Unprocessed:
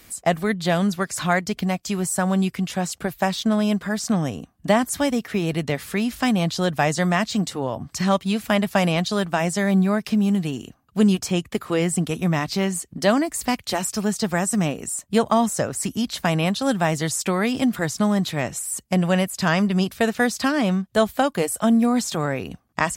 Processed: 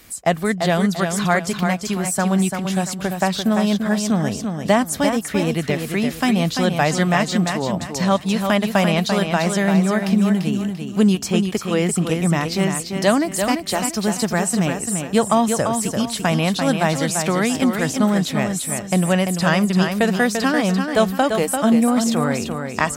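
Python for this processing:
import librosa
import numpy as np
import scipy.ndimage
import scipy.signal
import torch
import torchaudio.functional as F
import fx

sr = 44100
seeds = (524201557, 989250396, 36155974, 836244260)

y = fx.echo_feedback(x, sr, ms=342, feedback_pct=33, wet_db=-6.0)
y = y * 10.0 ** (2.0 / 20.0)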